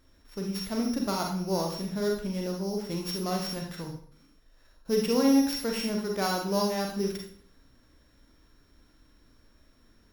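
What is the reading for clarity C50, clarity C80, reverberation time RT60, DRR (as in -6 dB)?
3.5 dB, 8.5 dB, 0.55 s, 0.5 dB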